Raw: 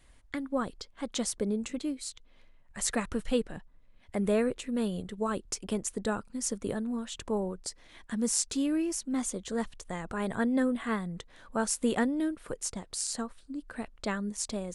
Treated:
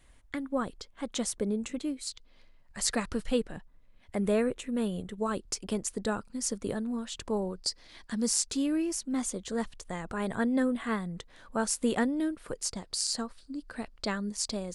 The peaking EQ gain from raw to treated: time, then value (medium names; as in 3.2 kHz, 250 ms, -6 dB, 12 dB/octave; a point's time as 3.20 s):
peaking EQ 4.7 kHz 0.39 oct
-2.5 dB
from 2.07 s +9 dB
from 3.24 s +1 dB
from 4.41 s -5.5 dB
from 5.18 s +4.5 dB
from 7.30 s +13.5 dB
from 8.33 s +2.5 dB
from 12.55 s +9.5 dB